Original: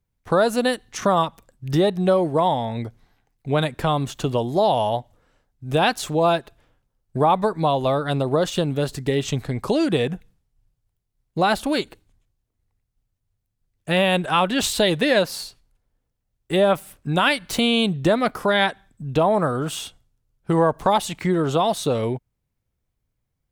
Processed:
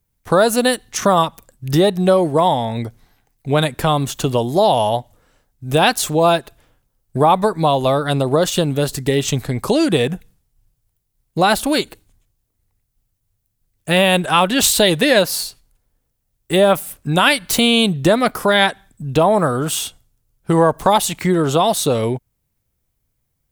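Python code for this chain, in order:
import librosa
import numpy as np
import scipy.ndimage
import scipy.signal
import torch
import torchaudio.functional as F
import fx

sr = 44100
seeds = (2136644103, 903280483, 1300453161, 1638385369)

y = fx.high_shelf(x, sr, hz=7300.0, db=12.0)
y = F.gain(torch.from_numpy(y), 4.5).numpy()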